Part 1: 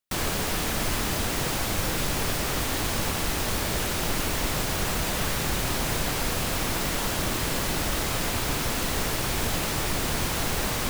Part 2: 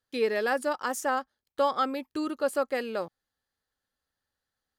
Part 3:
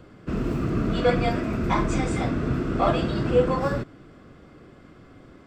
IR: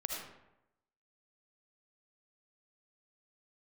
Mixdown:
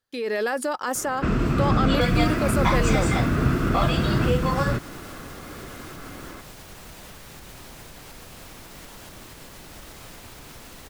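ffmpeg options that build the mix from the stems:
-filter_complex "[0:a]alimiter=limit=-22.5dB:level=0:latency=1:release=373,adelay=1900,volume=-16dB[a];[1:a]alimiter=level_in=1.5dB:limit=-24dB:level=0:latency=1:release=30,volume=-1.5dB,volume=2.5dB[b];[2:a]acrossover=split=200|3000[c][d][e];[d]acompressor=threshold=-33dB:ratio=6[f];[c][f][e]amix=inputs=3:normalize=0,equalizer=f=1.4k:w=0.64:g=8.5,adelay=950,volume=-0.5dB[g];[a][b][g]amix=inputs=3:normalize=0,dynaudnorm=f=120:g=5:m=6dB"

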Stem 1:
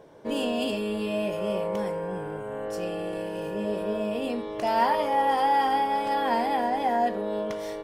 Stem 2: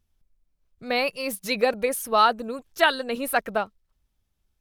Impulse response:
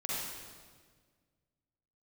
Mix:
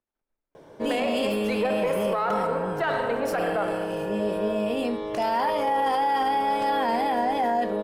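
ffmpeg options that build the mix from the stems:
-filter_complex "[0:a]adelay=550,volume=3dB[a];[1:a]aeval=exprs='if(lt(val(0),0),0.447*val(0),val(0))':c=same,acrossover=split=270 2000:gain=0.0708 1 0.141[b][c][d];[b][c][d]amix=inputs=3:normalize=0,dynaudnorm=f=110:g=3:m=8.5dB,volume=-5.5dB,asplit=2[e][f];[f]volume=-7.5dB[g];[2:a]atrim=start_sample=2205[h];[g][h]afir=irnorm=-1:irlink=0[i];[a][e][i]amix=inputs=3:normalize=0,alimiter=limit=-17dB:level=0:latency=1:release=10"

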